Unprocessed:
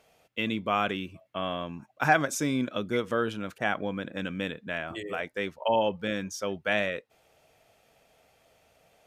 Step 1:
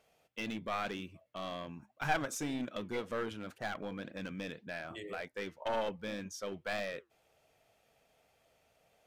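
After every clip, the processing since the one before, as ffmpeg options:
-af "aeval=exprs='clip(val(0),-1,0.0473)':c=same,flanger=delay=1.5:depth=6.1:regen=-80:speed=1.9:shape=sinusoidal,volume=-3dB"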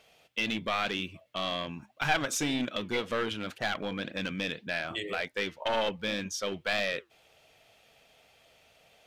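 -filter_complex "[0:a]equalizer=f=3.3k:w=0.87:g=8.5,asplit=2[a][b];[b]alimiter=level_in=2.5dB:limit=-24dB:level=0:latency=1:release=207,volume=-2.5dB,volume=0.5dB[c];[a][c]amix=inputs=2:normalize=0"

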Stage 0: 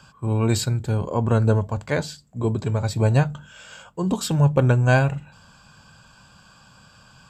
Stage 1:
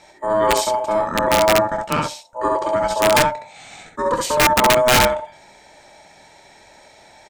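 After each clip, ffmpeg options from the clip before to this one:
-af "aeval=exprs='val(0)*sin(2*PI*750*n/s)':c=same,aecho=1:1:25|67:0.282|0.668,aeval=exprs='(mod(3.76*val(0)+1,2)-1)/3.76':c=same,volume=4.5dB"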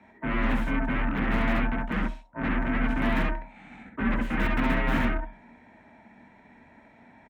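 -af "aeval=exprs='0.447*(cos(1*acos(clip(val(0)/0.447,-1,1)))-cos(1*PI/2))+0.126*(cos(3*acos(clip(val(0)/0.447,-1,1)))-cos(3*PI/2))+0.141*(cos(7*acos(clip(val(0)/0.447,-1,1)))-cos(7*PI/2))+0.112*(cos(8*acos(clip(val(0)/0.447,-1,1)))-cos(8*PI/2))':c=same,firequalizer=gain_entry='entry(110,0);entry(200,12);entry(320,-5);entry(570,-8);entry(1800,-3);entry(4600,-29)':delay=0.05:min_phase=1,afreqshift=36,volume=-8dB"

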